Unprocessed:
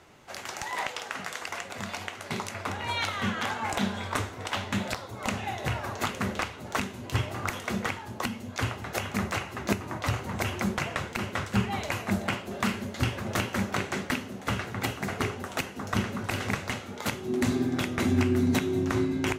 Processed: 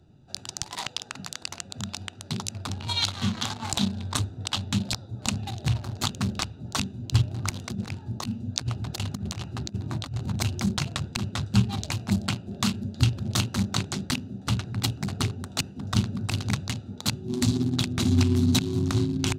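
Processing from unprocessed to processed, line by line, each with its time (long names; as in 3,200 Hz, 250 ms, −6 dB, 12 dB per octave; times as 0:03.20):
0:07.54–0:10.32: compressor whose output falls as the input rises −32 dBFS, ratio −0.5
whole clip: adaptive Wiener filter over 41 samples; octave-band graphic EQ 125/500/2,000/4,000/8,000 Hz +6/−11/−10/+12/+6 dB; level +3 dB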